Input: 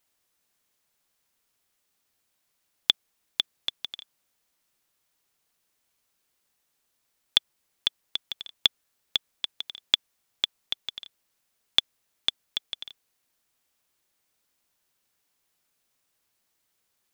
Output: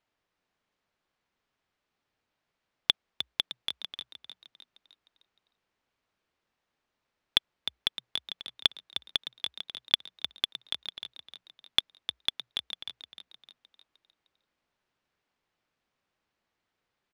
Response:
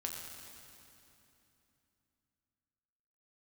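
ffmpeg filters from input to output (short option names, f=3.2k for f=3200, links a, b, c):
-filter_complex "[0:a]aemphasis=mode=reproduction:type=50fm,adynamicsmooth=sensitivity=2.5:basefreq=5.3k,asplit=6[a][b][c][d][e][f];[b]adelay=306,afreqshift=59,volume=-9.5dB[g];[c]adelay=612,afreqshift=118,volume=-15.9dB[h];[d]adelay=918,afreqshift=177,volume=-22.3dB[i];[e]adelay=1224,afreqshift=236,volume=-28.6dB[j];[f]adelay=1530,afreqshift=295,volume=-35dB[k];[a][g][h][i][j][k]amix=inputs=6:normalize=0"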